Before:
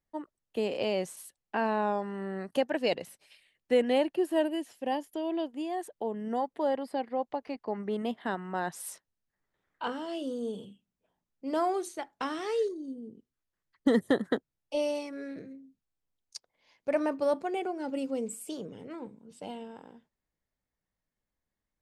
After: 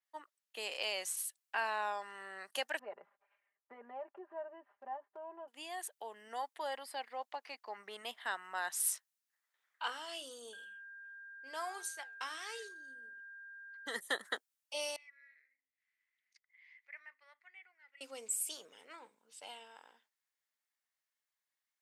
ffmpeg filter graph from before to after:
ffmpeg -i in.wav -filter_complex "[0:a]asettb=1/sr,asplit=3[link_01][link_02][link_03];[link_01]atrim=end=2.794[link_04];[link_02]atrim=start=2.79:end=5.48,asetpts=PTS-STARTPTS,afade=type=in:duration=0.004:curve=qsin,afade=type=out:start_time=2.686:duration=0.004:curve=qsin,lowpass=frequency=1200:width=0.5412,lowpass=frequency=1200:width=1.3066,acompressor=threshold=-36dB:ratio=2:attack=3.2:release=140:knee=1:detection=peak,aecho=1:1:5:0.86,atrim=end_sample=118629[link_05];[link_03]atrim=start=5.476[link_06];[link_04][link_05]acrossfade=duration=0.004:curve1=hsin:curve2=qsin[link_07];[link_07][link_06]acrossfade=duration=0.004:curve1=qsin:curve2=hsin,asettb=1/sr,asplit=3[link_08][link_09][link_10];[link_08]atrim=end=10.534[link_11];[link_09]atrim=start=10.53:end=13.96,asetpts=PTS-STARTPTS,afade=type=in:duration=0.004:curve=qsin,afade=type=out:start_time=3.426:duration=0.004:curve=qsin,flanger=delay=6.5:depth=5.3:regen=85:speed=1.5:shape=sinusoidal,aeval=exprs='val(0)+0.00355*sin(2*PI*1600*n/s)':channel_layout=same[link_12];[link_10]atrim=start=13.956[link_13];[link_11][link_12]acrossfade=duration=0.004:curve1=hsin:curve2=qsin[link_14];[link_14][link_13]acrossfade=duration=0.004:curve1=qsin:curve2=hsin,asettb=1/sr,asplit=3[link_15][link_16][link_17];[link_15]atrim=end=14.964[link_18];[link_16]atrim=start=14.96:end=18.01,asetpts=PTS-STARTPTS,afade=type=in:duration=0.004:curve=qsin,afade=type=out:start_time=3.046:duration=0.004:curve=qsin,acompressor=mode=upward:threshold=-39dB:ratio=2.5:attack=3.2:release=140:knee=2.83:detection=peak,bandpass=frequency=2000:width_type=q:width=13[link_19];[link_17]atrim=start=18.006[link_20];[link_18][link_19]acrossfade=duration=0.004:curve1=hsin:curve2=qsin[link_21];[link_21][link_20]acrossfade=duration=0.004:curve1=qsin:curve2=hsin,highpass=1300,adynamicequalizer=threshold=0.00141:dfrequency=5700:dqfactor=0.7:tfrequency=5700:tqfactor=0.7:attack=5:release=100:ratio=0.375:range=3.5:mode=boostabove:tftype=highshelf,volume=1.5dB" out.wav

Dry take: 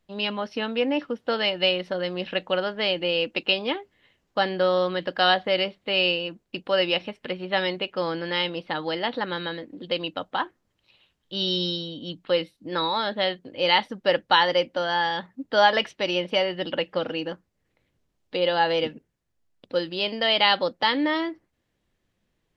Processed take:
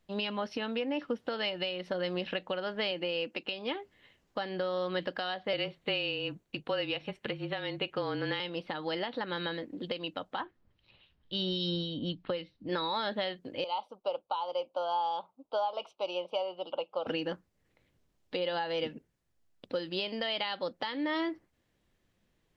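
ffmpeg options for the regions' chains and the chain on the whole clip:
ffmpeg -i in.wav -filter_complex "[0:a]asettb=1/sr,asplit=3[link_01][link_02][link_03];[link_01]atrim=end=2.914[link_04];[link_02]atrim=start=2.91:end=3.44,asetpts=PTS-STARTPTS,afade=type=in:duration=0.004:curve=qsin,afade=type=out:start_time=0.526:duration=0.004:curve=qsin,highpass=130,equalizer=frequency=3600:width_type=o:width=0.4:gain=-4.5[link_05];[link_03]atrim=start=3.436[link_06];[link_04][link_05]acrossfade=duration=0.004:curve1=hsin:curve2=qsin[link_07];[link_07][link_06]acrossfade=duration=0.004:curve1=qsin:curve2=hsin,asettb=1/sr,asplit=3[link_08][link_09][link_10];[link_08]atrim=end=5.534[link_11];[link_09]atrim=start=5.53:end=8.4,asetpts=PTS-STARTPTS,afade=type=in:duration=0.004:curve=qsin,afade=type=out:start_time=2.866:duration=0.004:curve=qsin,bandreject=frequency=5100:width=9.8,afreqshift=-28[link_12];[link_10]atrim=start=8.396[link_13];[link_11][link_12]acrossfade=duration=0.004:curve1=hsin:curve2=qsin[link_14];[link_14][link_13]acrossfade=duration=0.004:curve1=qsin:curve2=hsin,asettb=1/sr,asplit=3[link_15][link_16][link_17];[link_15]atrim=end=10.404[link_18];[link_16]atrim=start=10.4:end=12.69,asetpts=PTS-STARTPTS,afade=type=in:duration=0.004:curve=qsin,afade=type=out:start_time=2.286:duration=0.004:curve=qsin,lowpass=frequency=4700:width=0.5412,lowpass=frequency=4700:width=1.3066,lowshelf=frequency=140:gain=11,acrossover=split=2200[link_19][link_20];[link_19]aeval=exprs='val(0)*(1-0.5/2+0.5/2*cos(2*PI*3.7*n/s))':channel_layout=same[link_21];[link_20]aeval=exprs='val(0)*(1-0.5/2-0.5/2*cos(2*PI*3.7*n/s))':channel_layout=same[link_22];[link_21][link_22]amix=inputs=2:normalize=0[link_23];[link_17]atrim=start=12.686[link_24];[link_18][link_23]acrossfade=duration=0.004:curve1=hsin:curve2=qsin[link_25];[link_25][link_24]acrossfade=duration=0.004:curve1=qsin:curve2=hsin,asettb=1/sr,asplit=3[link_26][link_27][link_28];[link_26]atrim=end=13.644[link_29];[link_27]atrim=start=13.64:end=17.07,asetpts=PTS-STARTPTS,afade=type=in:duration=0.004:curve=qsin,afade=type=out:start_time=3.426:duration=0.004:curve=qsin,asuperstop=centerf=1800:order=4:qfactor=1,acrossover=split=570 2100:gain=0.0631 1 0.158[link_30][link_31][link_32];[link_30][link_31][link_32]amix=inputs=3:normalize=0[link_33];[link_28]atrim=start=17.066[link_34];[link_29][link_33]acrossfade=duration=0.004:curve1=hsin:curve2=qsin[link_35];[link_35][link_34]acrossfade=duration=0.004:curve1=qsin:curve2=hsin,acompressor=threshold=-27dB:ratio=6,alimiter=limit=-22dB:level=0:latency=1:release=411" out.wav

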